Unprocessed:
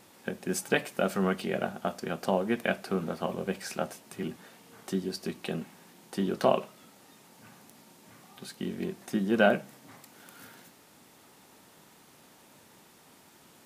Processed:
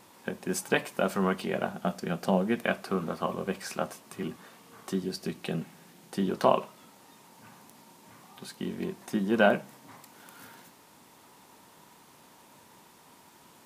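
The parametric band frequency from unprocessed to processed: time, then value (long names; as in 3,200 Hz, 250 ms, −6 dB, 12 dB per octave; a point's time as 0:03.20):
parametric band +8 dB 0.3 octaves
1,000 Hz
from 0:01.74 180 Hz
from 0:02.63 1,100 Hz
from 0:05.03 150 Hz
from 0:06.30 980 Hz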